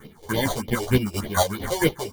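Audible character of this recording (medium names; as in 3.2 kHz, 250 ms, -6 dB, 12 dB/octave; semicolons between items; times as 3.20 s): aliases and images of a low sample rate 2.6 kHz, jitter 0%; phasing stages 4, 3.3 Hz, lowest notch 210–1500 Hz; chopped level 4.4 Hz, depth 60%, duty 25%; a shimmering, thickened sound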